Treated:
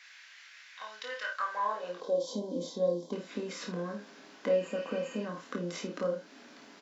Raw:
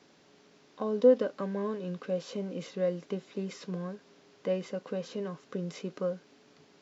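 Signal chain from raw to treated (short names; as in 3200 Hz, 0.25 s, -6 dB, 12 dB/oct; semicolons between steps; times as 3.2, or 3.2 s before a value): dynamic EQ 2000 Hz, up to -5 dB, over -50 dBFS, Q 0.9; on a send: early reflections 23 ms -5.5 dB, 54 ms -8 dB; on the sum: high-pass sweep 2000 Hz -> 240 Hz, 1.19–2.34; in parallel at -2 dB: compressor, threshold -39 dBFS, peak gain reduction 16 dB; on the sum: spectral repair 4.63–5.23, 1600–6500 Hz before; fifteen-band EQ 160 Hz -10 dB, 400 Hz -9 dB, 1600 Hz +5 dB; spectral gain 2–3.13, 1100–3100 Hz -21 dB; doubler 29 ms -6 dB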